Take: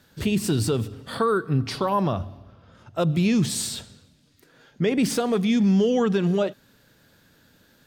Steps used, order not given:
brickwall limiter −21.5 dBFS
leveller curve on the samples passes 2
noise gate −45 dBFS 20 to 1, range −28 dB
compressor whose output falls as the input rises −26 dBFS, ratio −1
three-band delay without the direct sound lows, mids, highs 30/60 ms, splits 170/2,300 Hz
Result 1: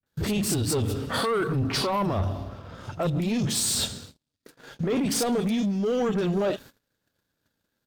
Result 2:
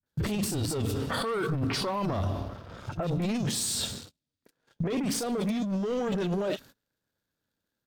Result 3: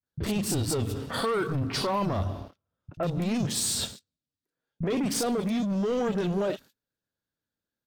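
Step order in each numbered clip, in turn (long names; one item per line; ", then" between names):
compressor whose output falls as the input rises, then brickwall limiter, then three-band delay without the direct sound, then leveller curve on the samples, then noise gate
leveller curve on the samples, then three-band delay without the direct sound, then compressor whose output falls as the input rises, then noise gate, then brickwall limiter
noise gate, then leveller curve on the samples, then brickwall limiter, then three-band delay without the direct sound, then compressor whose output falls as the input rises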